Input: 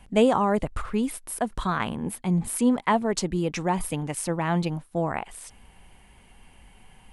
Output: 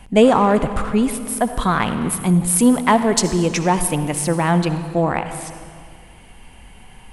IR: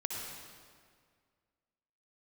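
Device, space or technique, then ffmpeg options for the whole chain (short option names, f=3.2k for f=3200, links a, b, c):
saturated reverb return: -filter_complex "[0:a]asplit=2[a][b];[1:a]atrim=start_sample=2205[c];[b][c]afir=irnorm=-1:irlink=0,asoftclip=type=tanh:threshold=-20dB,volume=-6dB[d];[a][d]amix=inputs=2:normalize=0,asettb=1/sr,asplit=3[e][f][g];[e]atrim=end=2.014[h];[f]atrim=start=2.01:end=3.88,asetpts=PTS-STARTPTS,afade=t=in:d=0.004:c=qsin,afade=t=out:st=1.866:d=0.004:c=qsin,equalizer=f=9.6k:t=o:w=1.7:g=5.5[i];[g]atrim=start=3.876[j];[h][i]acrossfade=d=0.004:c1=hsin:c2=qsin[k];[k][j]acrossfade=d=0.004:c1=qsin:c2=hsin,volume=5.5dB"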